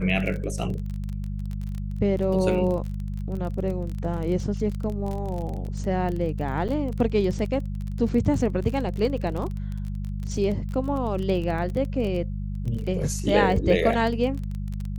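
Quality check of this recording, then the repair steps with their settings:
surface crackle 24 per second −29 dBFS
mains hum 50 Hz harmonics 4 −30 dBFS
0:06.68–0:06.69: drop-out 7.5 ms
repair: click removal
hum removal 50 Hz, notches 4
repair the gap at 0:06.68, 7.5 ms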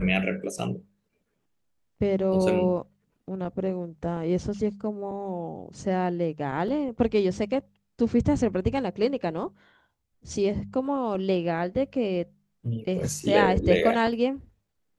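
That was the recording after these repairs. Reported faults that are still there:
none of them is left

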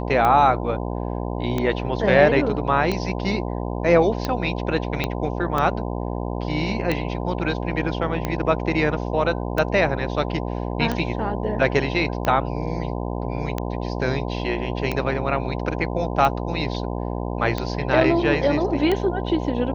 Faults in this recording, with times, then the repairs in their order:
mains buzz 60 Hz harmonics 17 −27 dBFS
scratch tick 45 rpm −10 dBFS
0:05.04: click −9 dBFS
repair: click removal
hum removal 60 Hz, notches 17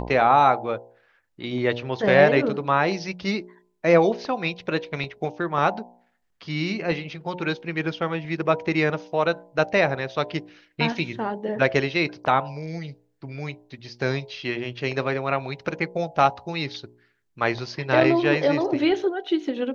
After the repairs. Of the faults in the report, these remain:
0:05.04: click

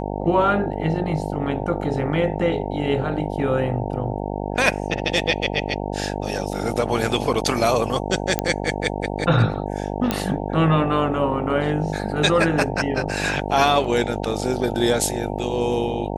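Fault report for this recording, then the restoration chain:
mains buzz 50 Hz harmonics 18 −27 dBFS
0:08.39: click −4 dBFS
0:10.11: click −7 dBFS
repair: click removal
hum removal 50 Hz, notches 18

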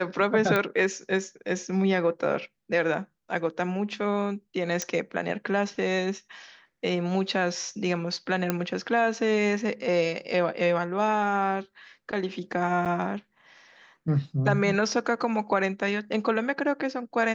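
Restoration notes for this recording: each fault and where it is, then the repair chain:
0:00.56: click −12 dBFS
0:04.82: click −14 dBFS
0:08.50: click −10 dBFS
0:12.85–0:12.86: drop-out 7.9 ms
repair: click removal
repair the gap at 0:12.85, 7.9 ms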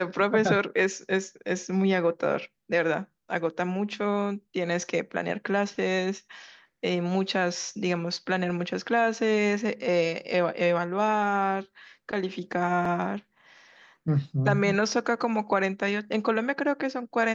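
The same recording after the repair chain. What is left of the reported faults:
none of them is left

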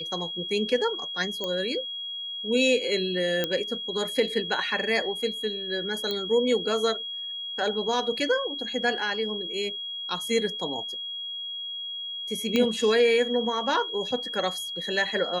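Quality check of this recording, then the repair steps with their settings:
whistle 3,300 Hz −32 dBFS
0:01.44: click −16 dBFS
0:03.44: click −11 dBFS
0:06.11: click −16 dBFS
0:12.56: click −11 dBFS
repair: click removal
notch filter 3,300 Hz, Q 30

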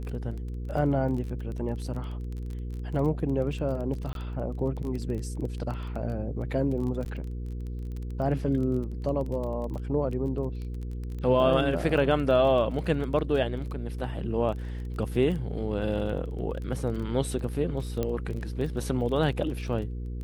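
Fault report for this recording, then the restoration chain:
surface crackle 21 per second −34 dBFS
mains hum 60 Hz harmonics 8 −34 dBFS
0:04.13–0:04.15: drop-out 22 ms
0:07.05–0:07.06: drop-out 9.3 ms
0:18.03: click −16 dBFS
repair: click removal
hum removal 60 Hz, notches 8
repair the gap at 0:04.13, 22 ms
repair the gap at 0:07.05, 9.3 ms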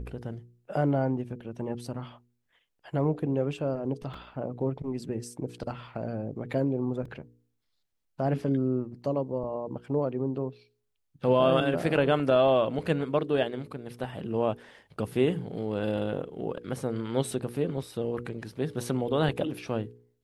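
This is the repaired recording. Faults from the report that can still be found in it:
0:18.03: click

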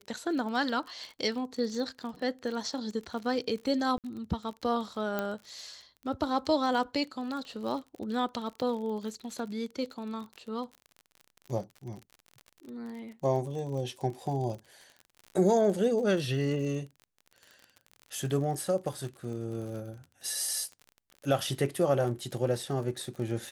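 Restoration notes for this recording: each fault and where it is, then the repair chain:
surface crackle 42 per second −38 dBFS
0:03.98–0:04.04: drop-out 58 ms
0:05.19: click −17 dBFS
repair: click removal
repair the gap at 0:03.98, 58 ms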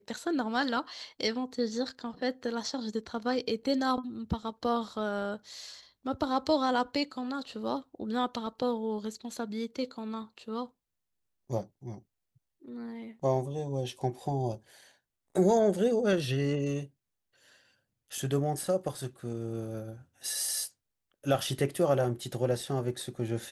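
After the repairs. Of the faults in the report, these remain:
none of them is left

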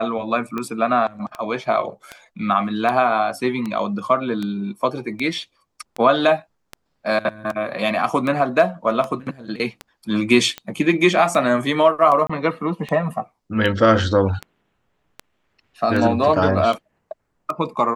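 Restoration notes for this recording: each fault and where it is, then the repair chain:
scratch tick 78 rpm −14 dBFS
0:12.27–0:12.29: drop-out 25 ms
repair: click removal
repair the gap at 0:12.27, 25 ms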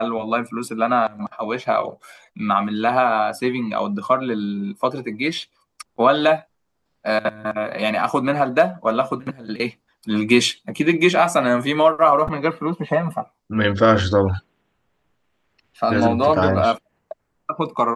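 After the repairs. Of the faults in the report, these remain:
none of them is left

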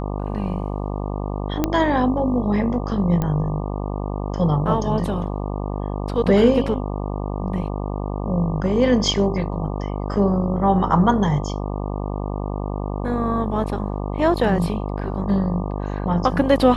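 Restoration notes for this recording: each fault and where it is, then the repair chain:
mains buzz 50 Hz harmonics 24 −26 dBFS
0:01.64: click −6 dBFS
0:03.22: click −11 dBFS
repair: click removal
hum removal 50 Hz, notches 24

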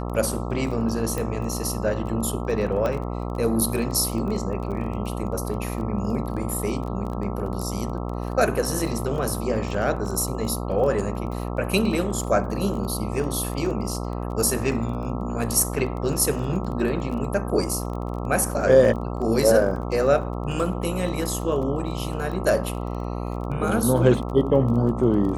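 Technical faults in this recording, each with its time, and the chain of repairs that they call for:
mains buzz 60 Hz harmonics 22 −29 dBFS
surface crackle 23 per second −31 dBFS
0:01.18: click
0:02.86: click −14 dBFS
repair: click removal
hum removal 60 Hz, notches 22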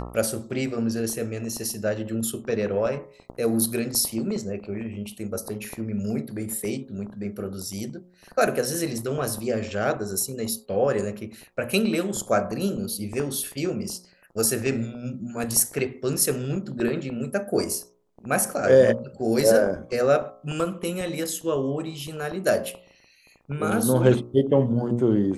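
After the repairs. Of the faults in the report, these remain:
none of them is left

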